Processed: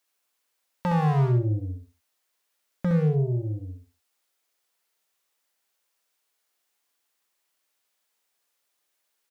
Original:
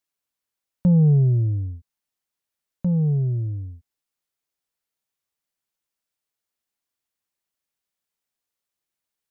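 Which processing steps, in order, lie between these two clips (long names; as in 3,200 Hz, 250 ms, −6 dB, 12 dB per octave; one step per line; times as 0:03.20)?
bass and treble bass −15 dB, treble −1 dB
wave folding −26.5 dBFS
repeating echo 65 ms, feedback 25%, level −5 dB
level +9 dB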